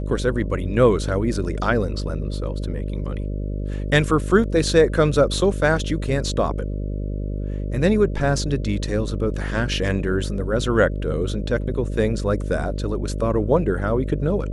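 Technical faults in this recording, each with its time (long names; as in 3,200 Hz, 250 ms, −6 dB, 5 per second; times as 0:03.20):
mains buzz 50 Hz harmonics 12 −26 dBFS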